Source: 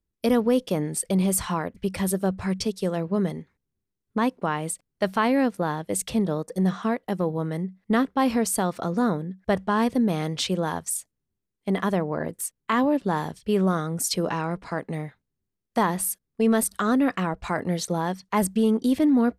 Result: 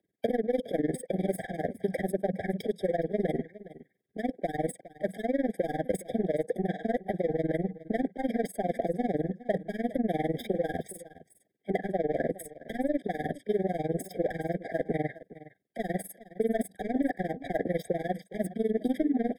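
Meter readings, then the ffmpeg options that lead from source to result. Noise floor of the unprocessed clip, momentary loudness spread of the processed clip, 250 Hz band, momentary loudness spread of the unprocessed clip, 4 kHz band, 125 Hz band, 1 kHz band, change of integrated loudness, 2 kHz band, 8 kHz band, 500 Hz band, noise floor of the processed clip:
-83 dBFS, 7 LU, -8.0 dB, 8 LU, -15.5 dB, -8.0 dB, -9.0 dB, -6.5 dB, -8.0 dB, -18.5 dB, -2.5 dB, -74 dBFS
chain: -filter_complex "[0:a]highpass=f=94:w=0.5412,highpass=f=94:w=1.3066,aemphasis=mode=reproduction:type=75kf,areverse,acompressor=threshold=-29dB:ratio=6,areverse,asplit=2[a][b];[b]highpass=f=720:p=1,volume=24dB,asoftclip=type=tanh:threshold=-18.5dB[c];[a][c]amix=inputs=2:normalize=0,lowpass=f=1.4k:p=1,volume=-6dB,aexciter=amount=5.3:drive=6.6:freq=8.8k,acrossover=split=240|1400[d][e][f];[d]acompressor=threshold=-41dB:ratio=4[g];[e]acompressor=threshold=-28dB:ratio=4[h];[f]acompressor=threshold=-46dB:ratio=4[i];[g][h][i]amix=inputs=3:normalize=0,tremolo=f=20:d=0.947,asplit=2[j][k];[k]aecho=0:1:413:0.133[l];[j][l]amix=inputs=2:normalize=0,afftfilt=real='re*eq(mod(floor(b*sr/1024/780),2),0)':imag='im*eq(mod(floor(b*sr/1024/780),2),0)':win_size=1024:overlap=0.75,volume=6dB"

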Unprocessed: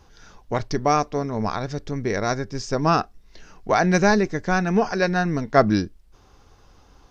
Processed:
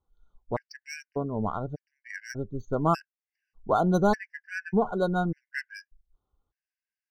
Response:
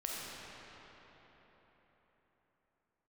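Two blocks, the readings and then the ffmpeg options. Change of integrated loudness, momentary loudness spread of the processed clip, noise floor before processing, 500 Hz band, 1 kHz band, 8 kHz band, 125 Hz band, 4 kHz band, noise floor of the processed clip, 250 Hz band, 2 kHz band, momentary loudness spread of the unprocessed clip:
-7.0 dB, 17 LU, -54 dBFS, -7.0 dB, -7.5 dB, n/a, -6.5 dB, -13.0 dB, under -85 dBFS, -7.0 dB, -10.0 dB, 11 LU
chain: -af "afftdn=nr=24:nf=-29,adynamicsmooth=sensitivity=4.5:basefreq=4k,afftfilt=real='re*gt(sin(2*PI*0.84*pts/sr)*(1-2*mod(floor(b*sr/1024/1500),2)),0)':imag='im*gt(sin(2*PI*0.84*pts/sr)*(1-2*mod(floor(b*sr/1024/1500),2)),0)':win_size=1024:overlap=0.75,volume=-4dB"

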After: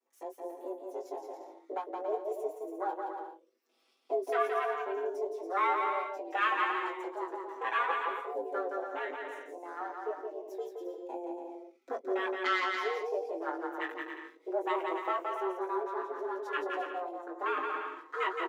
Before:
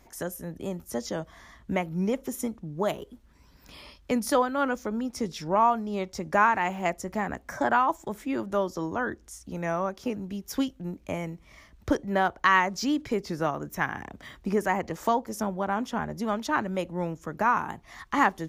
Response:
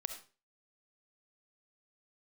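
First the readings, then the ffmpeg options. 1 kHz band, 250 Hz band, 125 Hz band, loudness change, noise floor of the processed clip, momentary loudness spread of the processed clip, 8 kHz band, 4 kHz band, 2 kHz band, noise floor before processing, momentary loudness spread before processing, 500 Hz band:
-6.0 dB, -14.0 dB, under -40 dB, -6.5 dB, -67 dBFS, 12 LU, under -20 dB, -5.5 dB, -6.0 dB, -57 dBFS, 14 LU, -4.0 dB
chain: -filter_complex "[0:a]aeval=exprs='if(lt(val(0),0),0.251*val(0),val(0))':c=same,highpass=f=87:w=0.5412,highpass=f=87:w=1.3066,afwtdn=0.02,asplit=2[a][b];[b]adelay=20,volume=-7dB[c];[a][c]amix=inputs=2:normalize=0,afreqshift=180,acrossover=split=980[d][e];[d]aeval=exprs='val(0)*(1-0.5/2+0.5/2*cos(2*PI*2.4*n/s))':c=same[f];[e]aeval=exprs='val(0)*(1-0.5/2-0.5/2*cos(2*PI*2.4*n/s))':c=same[g];[f][g]amix=inputs=2:normalize=0,asplit=2[h][i];[i]aecho=0:1:170|280.5|352.3|399|429.4:0.631|0.398|0.251|0.158|0.1[j];[h][j]amix=inputs=2:normalize=0,asplit=2[k][l];[l]adelay=5.6,afreqshift=0.26[m];[k][m]amix=inputs=2:normalize=1"

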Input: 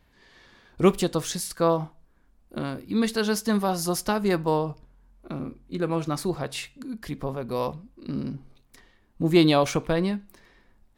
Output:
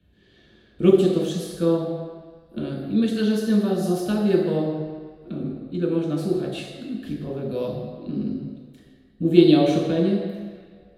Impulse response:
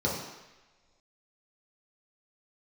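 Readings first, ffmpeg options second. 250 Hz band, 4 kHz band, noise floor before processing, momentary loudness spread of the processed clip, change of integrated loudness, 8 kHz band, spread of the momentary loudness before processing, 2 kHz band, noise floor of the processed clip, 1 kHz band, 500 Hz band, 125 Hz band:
+5.5 dB, -1.5 dB, -62 dBFS, 16 LU, +3.5 dB, -8.5 dB, 14 LU, -4.5 dB, -56 dBFS, -6.0 dB, +4.0 dB, +3.0 dB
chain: -filter_complex "[0:a]acrossover=split=160[a][b];[a]acompressor=threshold=-45dB:ratio=6[c];[c][b]amix=inputs=2:normalize=0,equalizer=f=940:t=o:w=0.37:g=-14.5[d];[1:a]atrim=start_sample=2205,asetrate=30870,aresample=44100[e];[d][e]afir=irnorm=-1:irlink=0,volume=-13dB"

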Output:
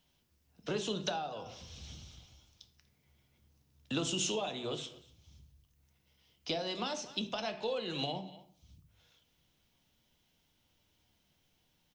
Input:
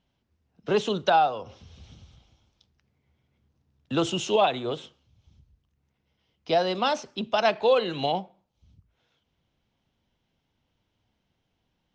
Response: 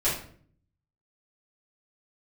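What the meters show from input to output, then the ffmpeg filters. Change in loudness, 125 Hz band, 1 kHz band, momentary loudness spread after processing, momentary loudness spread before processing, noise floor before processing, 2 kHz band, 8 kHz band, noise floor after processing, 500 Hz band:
-12.0 dB, -7.0 dB, -16.5 dB, 15 LU, 10 LU, -77 dBFS, -11.5 dB, +1.5 dB, -75 dBFS, -13.5 dB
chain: -filter_complex "[0:a]acompressor=threshold=-39dB:ratio=1.5,aecho=1:1:241:0.0668,acrossover=split=370[a][b];[b]acompressor=threshold=-37dB:ratio=4[c];[a][c]amix=inputs=2:normalize=0,asplit=2[d][e];[1:a]atrim=start_sample=2205[f];[e][f]afir=irnorm=-1:irlink=0,volume=-16.5dB[g];[d][g]amix=inputs=2:normalize=0,crystalizer=i=4:c=0,volume=-4dB"

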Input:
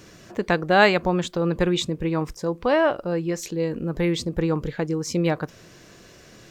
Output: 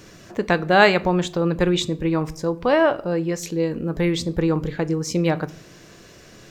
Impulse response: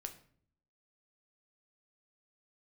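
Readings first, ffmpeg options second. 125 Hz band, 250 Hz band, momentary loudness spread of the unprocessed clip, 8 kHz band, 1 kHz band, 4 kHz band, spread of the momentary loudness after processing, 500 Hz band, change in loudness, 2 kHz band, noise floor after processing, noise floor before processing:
+2.5 dB, +2.5 dB, 10 LU, +2.0 dB, +2.0 dB, +2.0 dB, 9 LU, +2.0 dB, +2.0 dB, +2.0 dB, -47 dBFS, -49 dBFS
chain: -filter_complex "[0:a]asplit=2[a][b];[1:a]atrim=start_sample=2205[c];[b][c]afir=irnorm=-1:irlink=0,volume=0.5dB[d];[a][d]amix=inputs=2:normalize=0,volume=-2.5dB"

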